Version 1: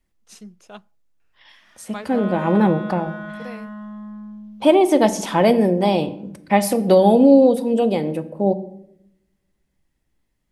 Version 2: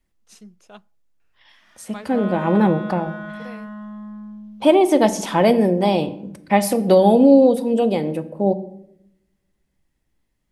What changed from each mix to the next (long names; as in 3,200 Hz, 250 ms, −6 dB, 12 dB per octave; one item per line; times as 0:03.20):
first voice −3.5 dB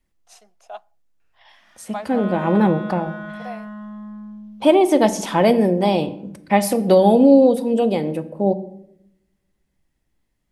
first voice: add high-pass with resonance 710 Hz, resonance Q 6.8